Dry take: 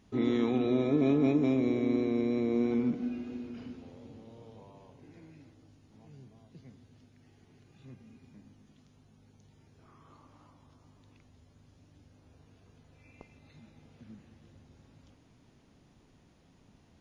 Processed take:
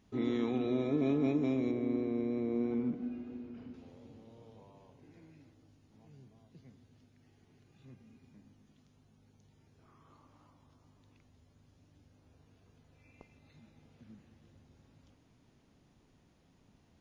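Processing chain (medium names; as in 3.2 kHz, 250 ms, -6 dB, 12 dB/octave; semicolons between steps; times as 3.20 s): 1.71–3.74 s: treble shelf 2.9 kHz -12 dB; trim -4.5 dB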